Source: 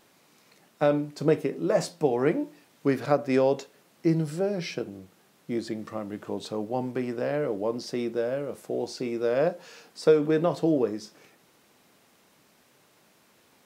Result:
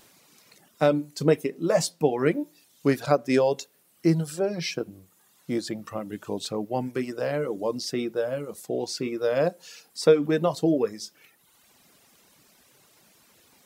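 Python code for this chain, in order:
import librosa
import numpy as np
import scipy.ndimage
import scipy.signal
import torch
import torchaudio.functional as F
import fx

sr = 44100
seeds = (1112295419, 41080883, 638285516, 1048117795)

y = fx.high_shelf(x, sr, hz=3600.0, db=8.5)
y = fx.dereverb_blind(y, sr, rt60_s=1.1)
y = fx.low_shelf(y, sr, hz=86.0, db=9.0)
y = y * librosa.db_to_amplitude(1.5)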